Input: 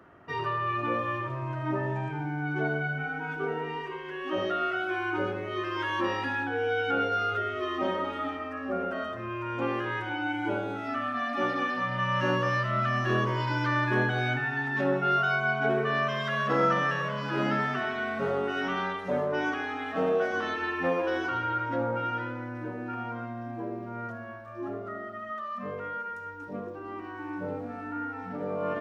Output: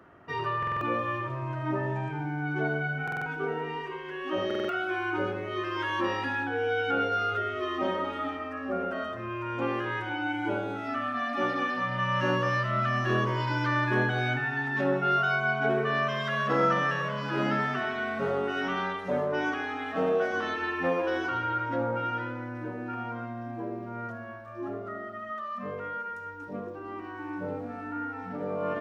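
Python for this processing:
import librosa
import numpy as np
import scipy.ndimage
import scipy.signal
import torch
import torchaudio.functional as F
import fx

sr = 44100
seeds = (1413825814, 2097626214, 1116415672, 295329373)

y = fx.buffer_glitch(x, sr, at_s=(0.58, 3.03, 4.46), block=2048, repeats=4)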